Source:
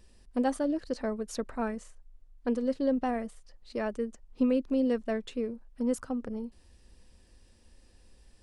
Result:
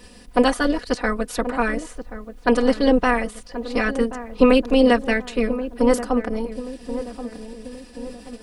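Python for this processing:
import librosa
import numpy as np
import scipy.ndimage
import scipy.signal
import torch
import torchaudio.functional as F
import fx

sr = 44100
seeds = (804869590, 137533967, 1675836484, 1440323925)

y = fx.spec_clip(x, sr, under_db=19)
y = fx.peak_eq(y, sr, hz=6700.0, db=-4.0, octaves=0.92)
y = y + 0.96 * np.pad(y, (int(4.1 * sr / 1000.0), 0))[:len(y)]
y = fx.echo_filtered(y, sr, ms=1080, feedback_pct=55, hz=830.0, wet_db=-11)
y = y * librosa.db_to_amplitude(7.5)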